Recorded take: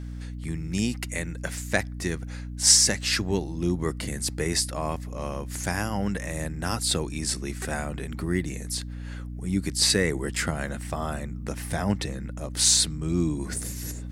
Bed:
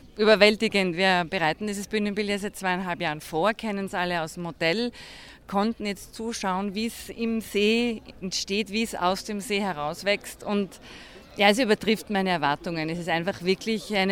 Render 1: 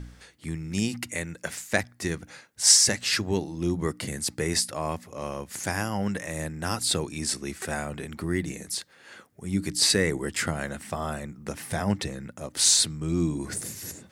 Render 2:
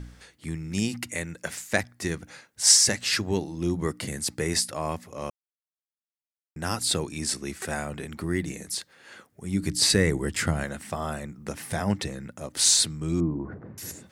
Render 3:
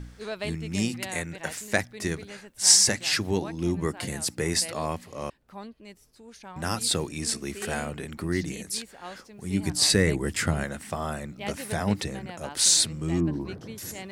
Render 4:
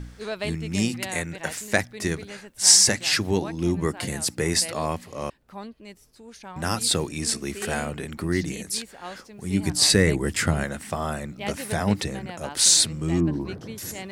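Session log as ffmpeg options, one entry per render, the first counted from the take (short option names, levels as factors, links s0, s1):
-af "bandreject=f=60:t=h:w=4,bandreject=f=120:t=h:w=4,bandreject=f=180:t=h:w=4,bandreject=f=240:t=h:w=4,bandreject=f=300:t=h:w=4"
-filter_complex "[0:a]asettb=1/sr,asplit=3[s0][s1][s2];[s0]atrim=end=9.634[s3];[s1]atrim=start=9.63:end=10.64,asetpts=PTS-STARTPTS,afade=t=in:d=0.004:c=qsin,afade=t=out:st=1.006:d=0.004:c=qsin,lowshelf=f=140:g=10[s4];[s2]atrim=start=10.636[s5];[s3][s4]acrossfade=d=0.004:c1=hsin:c2=qsin[s6];[s6][s5]acrossfade=d=0.004:c1=qsin:c2=hsin,asettb=1/sr,asplit=3[s7][s8][s9];[s7]atrim=end=13.204[s10];[s8]atrim=start=13.2:end=13.78,asetpts=PTS-STARTPTS,afade=t=in:d=0.004:c=qsin,afade=t=out:st=0.576:d=0.004:c=qsin,lowpass=f=1300:w=0.5412,lowpass=f=1300:w=1.3066[s11];[s9]atrim=start=13.776[s12];[s10][s11]acrossfade=d=0.004:c1=hsin:c2=qsin[s13];[s13][s12]acrossfade=d=0.004:c1=qsin:c2=hsin,asplit=3[s14][s15][s16];[s14]atrim=end=5.3,asetpts=PTS-STARTPTS,afade=t=out:st=5.296:d=0.004:c=hsin[s17];[s15]atrim=start=5.3:end=6.56,asetpts=PTS-STARTPTS,volume=0[s18];[s16]atrim=start=6.56,asetpts=PTS-STARTPTS,afade=t=in:d=0.004:c=hsin[s19];[s17][s18][s19]concat=n=3:v=0:a=1"
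-filter_complex "[1:a]volume=0.141[s0];[0:a][s0]amix=inputs=2:normalize=0"
-af "volume=1.41,alimiter=limit=0.794:level=0:latency=1"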